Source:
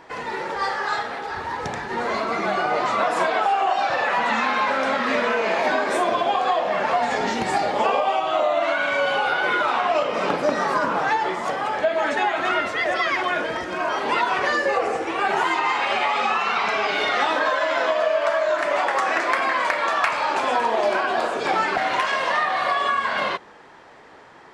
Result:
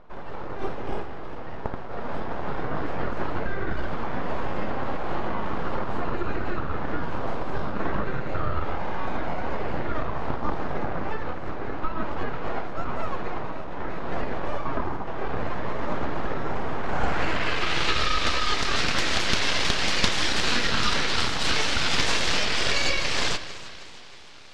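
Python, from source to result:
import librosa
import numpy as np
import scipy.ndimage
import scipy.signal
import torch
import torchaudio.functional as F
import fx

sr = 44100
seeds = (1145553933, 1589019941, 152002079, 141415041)

p1 = fx.high_shelf_res(x, sr, hz=2700.0, db=13.0, q=1.5)
p2 = p1 + fx.echo_alternate(p1, sr, ms=158, hz=2300.0, feedback_pct=71, wet_db=-12.0, dry=0)
p3 = np.abs(p2)
y = fx.filter_sweep_lowpass(p3, sr, from_hz=920.0, to_hz=4600.0, start_s=16.81, end_s=18.05, q=0.96)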